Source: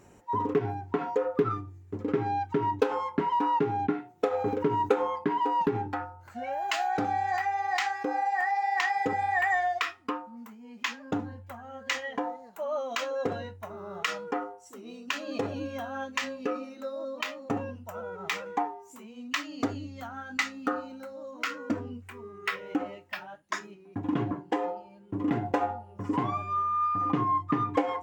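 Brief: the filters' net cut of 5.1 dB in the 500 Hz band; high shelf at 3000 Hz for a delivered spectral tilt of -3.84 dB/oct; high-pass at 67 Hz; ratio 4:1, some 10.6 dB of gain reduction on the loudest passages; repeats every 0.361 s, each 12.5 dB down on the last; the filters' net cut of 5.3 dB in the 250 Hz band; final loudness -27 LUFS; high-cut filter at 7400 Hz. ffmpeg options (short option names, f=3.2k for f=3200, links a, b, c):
-af "highpass=67,lowpass=7.4k,equalizer=f=250:t=o:g=-5,equalizer=f=500:t=o:g=-4.5,highshelf=f=3k:g=-6,acompressor=threshold=-38dB:ratio=4,aecho=1:1:361|722|1083:0.237|0.0569|0.0137,volume=14.5dB"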